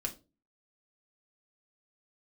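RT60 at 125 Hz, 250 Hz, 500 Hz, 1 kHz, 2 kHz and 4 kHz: 0.45, 0.45, 0.35, 0.25, 0.20, 0.25 s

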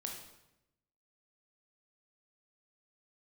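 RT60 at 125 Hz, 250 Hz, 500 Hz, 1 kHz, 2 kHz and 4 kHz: 1.2, 1.1, 0.95, 0.85, 0.80, 0.75 s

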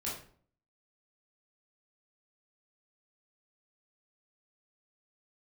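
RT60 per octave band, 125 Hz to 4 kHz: 0.65, 0.60, 0.55, 0.45, 0.40, 0.35 s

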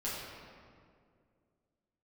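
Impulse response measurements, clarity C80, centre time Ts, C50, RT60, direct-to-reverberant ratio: 0.5 dB, 0.12 s, -1.5 dB, 2.2 s, -9.0 dB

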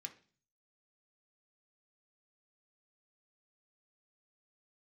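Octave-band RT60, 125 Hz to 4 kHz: 0.80, 0.55, 0.45, 0.40, 0.40, 0.50 s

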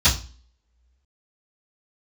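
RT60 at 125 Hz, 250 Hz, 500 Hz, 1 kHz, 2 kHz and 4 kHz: 0.40, 0.50, 0.35, 0.35, 0.35, 0.40 s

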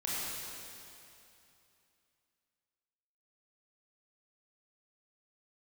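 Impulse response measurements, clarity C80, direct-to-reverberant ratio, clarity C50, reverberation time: -3.0 dB, -7.5 dB, -4.5 dB, 2.8 s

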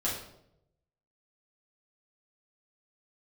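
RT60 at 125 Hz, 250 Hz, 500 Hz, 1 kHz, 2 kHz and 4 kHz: 1.2, 0.90, 0.90, 0.65, 0.55, 0.55 s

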